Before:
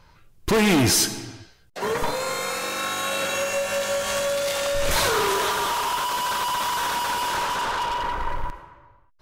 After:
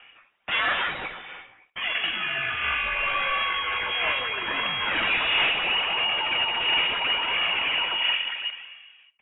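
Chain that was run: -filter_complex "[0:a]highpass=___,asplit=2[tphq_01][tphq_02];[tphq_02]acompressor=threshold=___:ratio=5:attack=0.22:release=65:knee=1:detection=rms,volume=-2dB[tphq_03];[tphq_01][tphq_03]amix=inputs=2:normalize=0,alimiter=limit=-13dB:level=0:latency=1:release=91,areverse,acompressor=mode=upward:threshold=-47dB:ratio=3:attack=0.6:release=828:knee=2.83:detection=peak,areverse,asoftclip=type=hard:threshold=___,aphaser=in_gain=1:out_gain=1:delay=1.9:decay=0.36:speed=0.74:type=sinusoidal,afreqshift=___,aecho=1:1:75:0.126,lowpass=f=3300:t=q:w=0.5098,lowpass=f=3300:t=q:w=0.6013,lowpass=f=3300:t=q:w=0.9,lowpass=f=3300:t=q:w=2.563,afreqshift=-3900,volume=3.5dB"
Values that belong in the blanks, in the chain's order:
1200, -42dB, -21dB, 54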